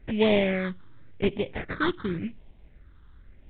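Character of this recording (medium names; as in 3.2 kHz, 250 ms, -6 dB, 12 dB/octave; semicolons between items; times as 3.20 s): aliases and images of a low sample rate 2.8 kHz, jitter 20%; phasing stages 6, 0.9 Hz, lowest notch 640–1400 Hz; µ-law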